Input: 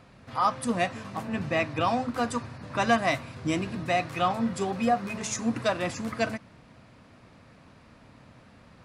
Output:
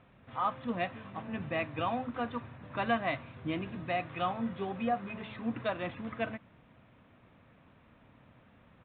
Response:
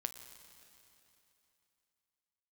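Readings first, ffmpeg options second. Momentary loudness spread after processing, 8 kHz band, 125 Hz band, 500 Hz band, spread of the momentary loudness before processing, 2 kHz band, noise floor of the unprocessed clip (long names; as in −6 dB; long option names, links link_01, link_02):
8 LU, below −40 dB, −7.0 dB, −7.0 dB, 7 LU, −7.0 dB, −55 dBFS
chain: -af "aresample=8000,aresample=44100,volume=-7dB"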